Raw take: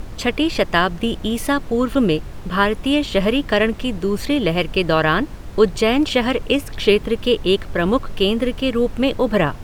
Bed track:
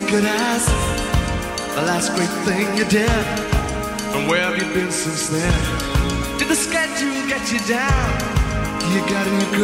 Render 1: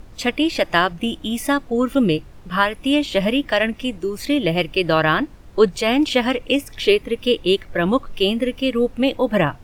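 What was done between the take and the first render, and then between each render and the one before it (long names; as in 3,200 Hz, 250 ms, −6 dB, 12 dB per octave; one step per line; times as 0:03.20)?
noise reduction from a noise print 10 dB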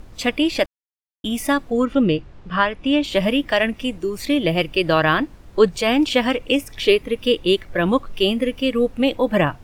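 0:00.66–0:01.24: silence
0:01.85–0:03.04: high-frequency loss of the air 110 metres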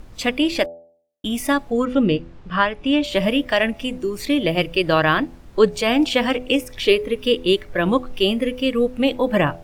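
hum removal 83.84 Hz, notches 10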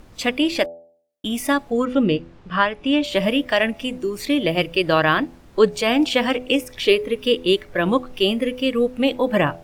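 low-shelf EQ 75 Hz −9 dB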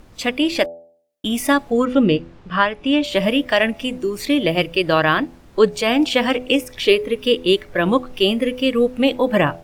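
automatic gain control gain up to 3.5 dB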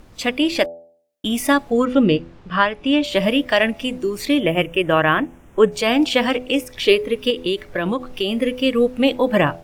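0:04.40–0:05.72: Butterworth band-reject 4,400 Hz, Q 1.5
0:06.26–0:06.75: transient designer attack −5 dB, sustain −1 dB
0:07.30–0:08.40: downward compressor 5 to 1, threshold −17 dBFS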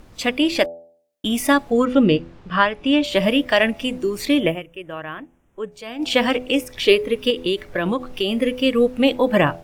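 0:04.47–0:06.11: duck −15.5 dB, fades 0.13 s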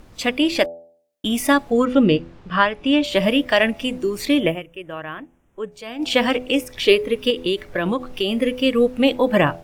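no processing that can be heard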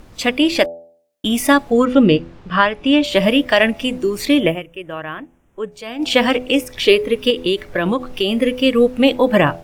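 level +3.5 dB
brickwall limiter −1 dBFS, peak gain reduction 2 dB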